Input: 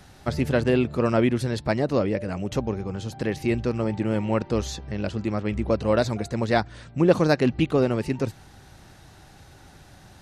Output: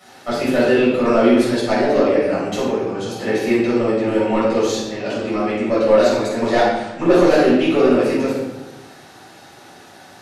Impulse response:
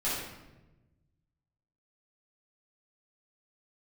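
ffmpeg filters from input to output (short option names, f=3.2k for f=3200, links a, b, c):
-filter_complex "[0:a]highpass=310,asoftclip=type=tanh:threshold=-16dB[a];[1:a]atrim=start_sample=2205[b];[a][b]afir=irnorm=-1:irlink=0,volume=2.5dB"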